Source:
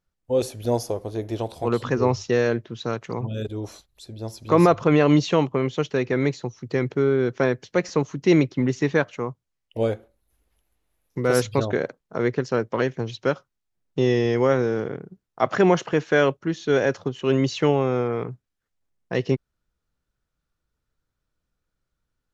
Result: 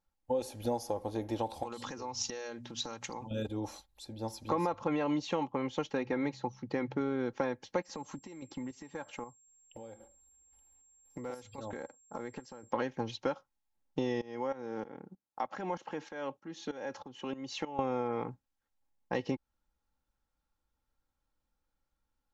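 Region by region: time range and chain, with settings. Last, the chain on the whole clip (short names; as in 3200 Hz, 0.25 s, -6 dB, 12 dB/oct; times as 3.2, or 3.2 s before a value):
1.63–3.31 notches 60/120/180/240 Hz + compressor 12:1, threshold -34 dBFS + bell 7100 Hz +14.5 dB 2.2 oct
5.93–7.01 air absorption 77 m + de-hum 64.99 Hz, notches 3
7.82–12.7 compressor 16:1, threshold -31 dBFS + chopper 1.9 Hz, depth 60%, duty 55% + whine 7500 Hz -57 dBFS
14.21–17.79 HPF 120 Hz + compressor 3:1, threshold -28 dBFS + tremolo saw up 3.2 Hz, depth 85%
whole clip: bell 870 Hz +12 dB 0.31 oct; comb 3.7 ms, depth 50%; compressor 6:1, threshold -23 dBFS; gain -6 dB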